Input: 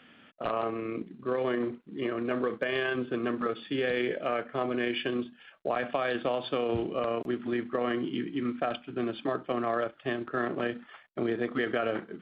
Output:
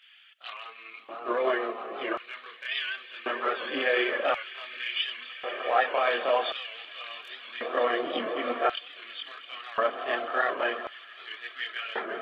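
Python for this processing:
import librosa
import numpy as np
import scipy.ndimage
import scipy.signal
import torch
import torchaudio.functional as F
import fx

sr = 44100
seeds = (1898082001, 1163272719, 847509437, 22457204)

y = fx.echo_swell(x, sr, ms=166, loudest=5, wet_db=-16.0)
y = fx.chorus_voices(y, sr, voices=6, hz=0.49, base_ms=25, depth_ms=2.6, mix_pct=60)
y = fx.filter_lfo_highpass(y, sr, shape='square', hz=0.46, low_hz=670.0, high_hz=2800.0, q=1.0)
y = fx.record_warp(y, sr, rpm=78.0, depth_cents=100.0)
y = y * 10.0 ** (8.5 / 20.0)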